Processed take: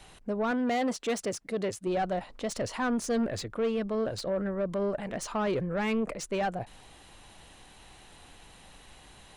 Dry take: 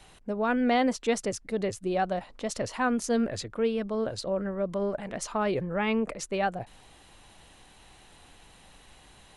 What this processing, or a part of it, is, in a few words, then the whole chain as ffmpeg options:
saturation between pre-emphasis and de-emphasis: -filter_complex "[0:a]highshelf=frequency=2300:gain=11,asoftclip=type=tanh:threshold=-24dB,highshelf=frequency=2300:gain=-11,asettb=1/sr,asplit=3[link_01][link_02][link_03];[link_01]atrim=end=0.514[link_04];[link_02]atrim=start=0.51:end=1.87,asetpts=PTS-STARTPTS,afade=type=in:duration=0.004:curve=qsin,afade=type=out:start_time=1.356:duration=0.004:curve=qsin,highpass=frequency=160:poles=1[link_05];[link_03]atrim=start=1.866[link_06];[link_04][link_05]acrossfade=duration=0.004:curve1=hsin:curve2=qsin[link_07];[link_07][link_06]acrossfade=duration=0.004:curve1=qsin:curve2=hsin,volume=1.5dB"

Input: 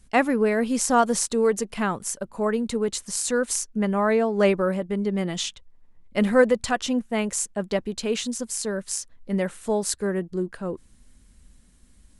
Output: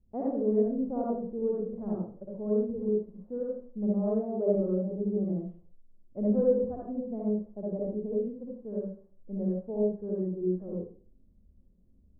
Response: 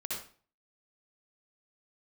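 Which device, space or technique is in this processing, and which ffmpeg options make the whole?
next room: -filter_complex "[0:a]lowpass=frequency=600:width=0.5412,lowpass=frequency=600:width=1.3066[link_01];[1:a]atrim=start_sample=2205[link_02];[link_01][link_02]afir=irnorm=-1:irlink=0,volume=-7.5dB"

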